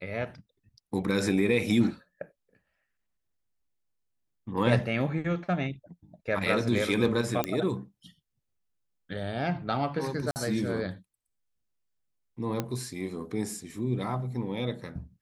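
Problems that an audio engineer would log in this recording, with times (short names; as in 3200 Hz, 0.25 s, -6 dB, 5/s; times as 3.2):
7.44 pop -12 dBFS
10.31–10.36 gap 49 ms
12.6 pop -15 dBFS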